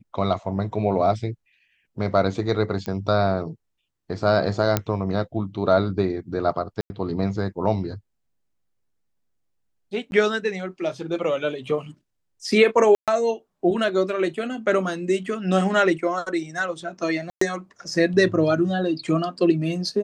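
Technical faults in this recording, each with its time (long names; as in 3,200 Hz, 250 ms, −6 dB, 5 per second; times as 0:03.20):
0:02.86: click −16 dBFS
0:04.77: click −5 dBFS
0:06.81–0:06.90: drop-out 90 ms
0:10.11–0:10.12: drop-out 11 ms
0:12.95–0:13.08: drop-out 127 ms
0:17.30–0:17.41: drop-out 114 ms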